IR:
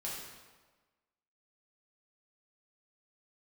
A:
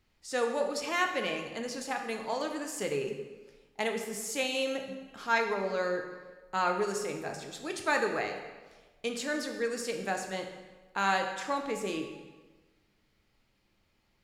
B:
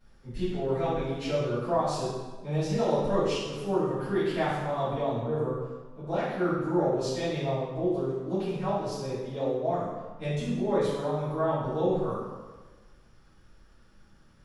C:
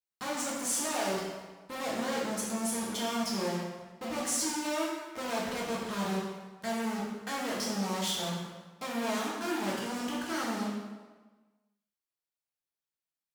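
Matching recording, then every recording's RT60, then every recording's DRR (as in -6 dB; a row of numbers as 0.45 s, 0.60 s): C; 1.3 s, 1.3 s, 1.3 s; 3.0 dB, -16.0 dB, -6.0 dB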